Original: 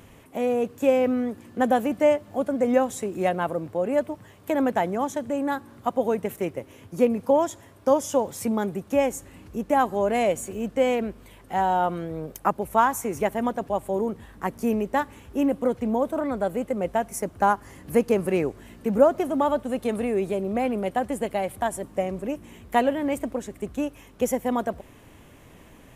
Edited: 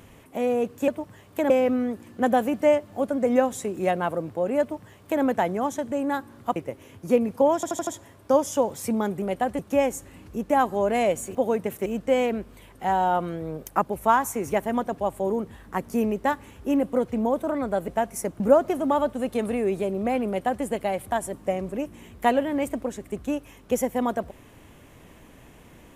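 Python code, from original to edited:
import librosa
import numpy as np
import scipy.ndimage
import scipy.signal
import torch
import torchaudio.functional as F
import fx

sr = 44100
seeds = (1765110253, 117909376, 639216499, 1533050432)

y = fx.edit(x, sr, fx.duplicate(start_s=3.99, length_s=0.62, to_s=0.88),
    fx.move(start_s=5.94, length_s=0.51, to_s=10.55),
    fx.stutter(start_s=7.44, slice_s=0.08, count=5),
    fx.cut(start_s=16.57, length_s=0.29),
    fx.cut(start_s=17.38, length_s=1.52),
    fx.duplicate(start_s=20.77, length_s=0.37, to_s=8.79), tone=tone)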